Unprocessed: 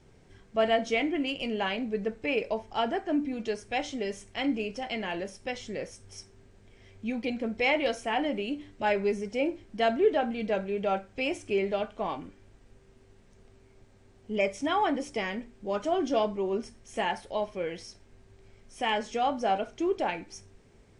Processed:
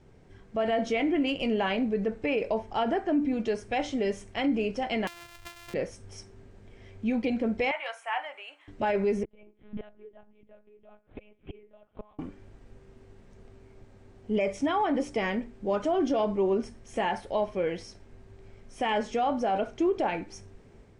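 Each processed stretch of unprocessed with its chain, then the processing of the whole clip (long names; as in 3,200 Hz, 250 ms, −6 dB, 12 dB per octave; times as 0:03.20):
0:05.07–0:05.74: samples sorted by size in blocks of 128 samples + drawn EQ curve 120 Hz 0 dB, 170 Hz −18 dB, 2,400 Hz +8 dB + downward compressor 8 to 1, threshold −41 dBFS
0:07.71–0:08.68: high-pass filter 910 Hz 24 dB per octave + parametric band 5,000 Hz −13.5 dB 1.2 octaves
0:09.23–0:12.19: gate with flip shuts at −28 dBFS, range −31 dB + one-pitch LPC vocoder at 8 kHz 210 Hz
whole clip: high-shelf EQ 2,500 Hz −8.5 dB; brickwall limiter −24.5 dBFS; automatic gain control gain up to 3.5 dB; level +2 dB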